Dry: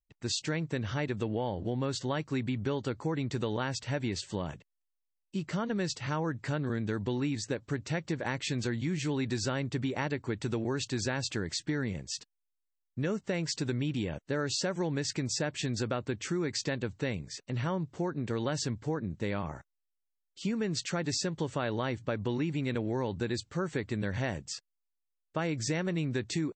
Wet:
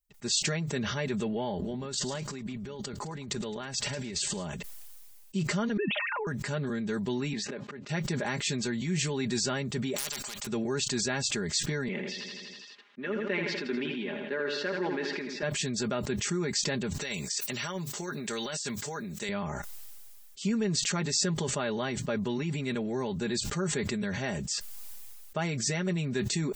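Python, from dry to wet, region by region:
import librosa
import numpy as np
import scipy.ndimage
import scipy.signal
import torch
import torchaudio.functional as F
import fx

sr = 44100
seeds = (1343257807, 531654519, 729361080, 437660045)

y = fx.chain(x, sr, fx.over_compress(threshold_db=-39.0, ratio=-0.5),
    fx.echo_feedback(ms=107, feedback_pct=49, wet_db=-23.5), at=(1.59, 4.46))
y = fx.chain(y, sr, fx.sine_speech(),
    fx.over_compress(threshold_db=-35.0, ratio=-1.0),
    fx.low_shelf(hz=190.0, db=8.5), at=(5.77, 6.27))
y = fx.chain(y, sr, fx.auto_swell(attack_ms=331.0),
    fx.bandpass_edges(low_hz=200.0, high_hz=2900.0), at=(7.33, 7.89))
y = fx.chain(y, sr, fx.clip_hard(threshold_db=-23.5),
    fx.spectral_comp(ratio=10.0), at=(9.96, 10.47))
y = fx.chain(y, sr, fx.cabinet(low_hz=250.0, low_slope=24, high_hz=3100.0, hz=(490.0, 700.0, 1800.0), db=(-3, -5, 4)),
    fx.echo_feedback(ms=82, feedback_pct=56, wet_db=-8.0), at=(11.88, 15.43))
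y = fx.chain(y, sr, fx.tilt_eq(slope=3.5),
    fx.over_compress(threshold_db=-36.0, ratio=-0.5), at=(17.01, 19.29))
y = fx.high_shelf(y, sr, hz=5900.0, db=11.0)
y = y + 0.75 * np.pad(y, (int(4.9 * sr / 1000.0), 0))[:len(y)]
y = fx.sustainer(y, sr, db_per_s=21.0)
y = y * 10.0 ** (-2.0 / 20.0)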